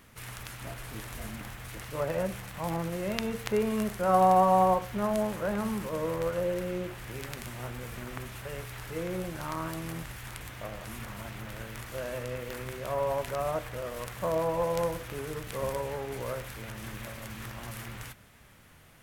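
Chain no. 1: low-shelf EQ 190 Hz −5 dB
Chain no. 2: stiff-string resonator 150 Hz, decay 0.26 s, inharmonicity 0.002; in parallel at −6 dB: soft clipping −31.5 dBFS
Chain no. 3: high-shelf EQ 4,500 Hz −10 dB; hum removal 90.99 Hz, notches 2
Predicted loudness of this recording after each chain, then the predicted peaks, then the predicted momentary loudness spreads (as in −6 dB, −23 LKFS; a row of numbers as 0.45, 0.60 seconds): −33.0, −41.5, −32.5 LKFS; −9.0, −21.5, −12.0 dBFS; 13, 12, 14 LU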